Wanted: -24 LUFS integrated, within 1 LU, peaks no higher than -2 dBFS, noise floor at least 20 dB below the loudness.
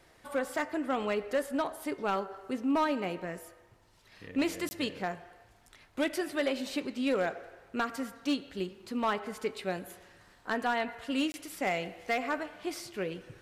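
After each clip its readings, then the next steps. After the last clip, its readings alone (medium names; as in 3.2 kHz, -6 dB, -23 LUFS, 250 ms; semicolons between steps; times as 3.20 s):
clipped samples 0.6%; clipping level -22.5 dBFS; dropouts 2; longest dropout 20 ms; loudness -33.5 LUFS; peak level -22.5 dBFS; loudness target -24.0 LUFS
-> clip repair -22.5 dBFS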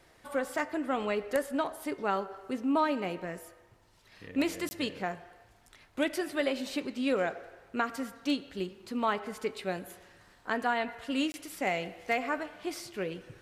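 clipped samples 0.0%; dropouts 2; longest dropout 20 ms
-> interpolate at 4.69/11.32 s, 20 ms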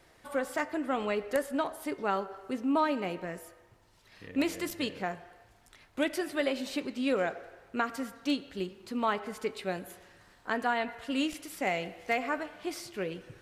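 dropouts 0; loudness -33.0 LUFS; peak level -13.5 dBFS; loudness target -24.0 LUFS
-> trim +9 dB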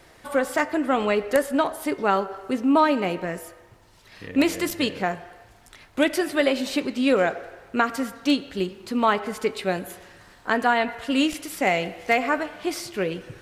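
loudness -24.0 LUFS; peak level -4.5 dBFS; noise floor -53 dBFS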